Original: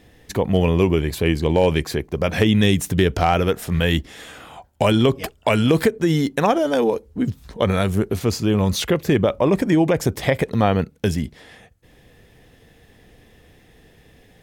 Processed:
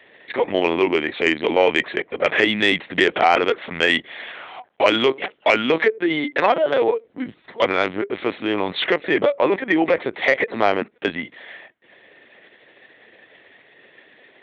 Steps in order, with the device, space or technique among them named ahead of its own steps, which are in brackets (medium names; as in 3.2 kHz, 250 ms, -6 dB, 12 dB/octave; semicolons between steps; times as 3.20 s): talking toy (LPC vocoder at 8 kHz pitch kept; high-pass 410 Hz 12 dB/octave; peaking EQ 2 kHz +8 dB 0.5 oct; saturation -6 dBFS, distortion -22 dB); trim +3.5 dB